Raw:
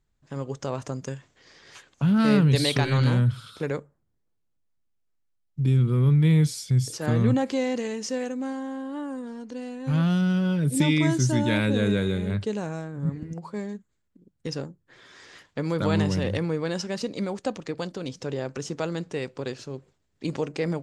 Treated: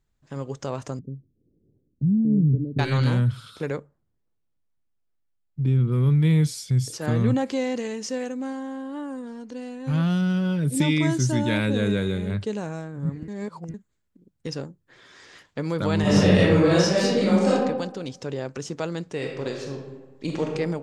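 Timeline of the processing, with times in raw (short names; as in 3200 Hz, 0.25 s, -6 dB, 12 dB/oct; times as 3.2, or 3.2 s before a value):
0.99–2.79 inverse Chebyshev low-pass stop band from 1100 Hz, stop band 60 dB
3.74–5.91 LPF 4300 Hz -> 2000 Hz 6 dB/oct
13.28–13.74 reverse
16.01–17.52 reverb throw, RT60 1 s, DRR -10 dB
19.14–20.52 reverb throw, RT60 1.2 s, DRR 0.5 dB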